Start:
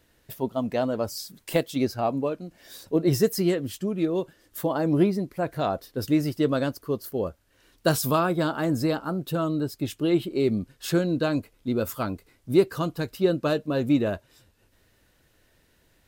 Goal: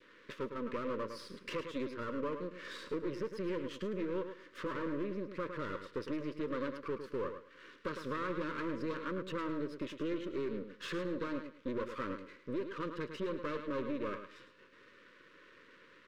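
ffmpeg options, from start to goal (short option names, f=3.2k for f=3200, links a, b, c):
-filter_complex "[0:a]adynamicequalizer=threshold=0.00794:dfrequency=1200:dqfactor=1.1:tfrequency=1200:tqfactor=1.1:attack=5:release=100:ratio=0.375:range=2:mode=cutabove:tftype=bell,acompressor=threshold=-36dB:ratio=10,asoftclip=type=tanh:threshold=-32dB,highpass=210,lowpass=3.1k,aeval=exprs='max(val(0),0)':c=same,asplit=2[a][b];[b]aecho=0:1:107|214|321:0.299|0.0597|0.0119[c];[a][c]amix=inputs=2:normalize=0,asplit=2[d][e];[e]highpass=f=720:p=1,volume=17dB,asoftclip=type=tanh:threshold=-29dB[f];[d][f]amix=inputs=2:normalize=0,lowpass=f=1.4k:p=1,volume=-6dB,asuperstop=centerf=750:order=8:qfactor=1.8,volume=6dB"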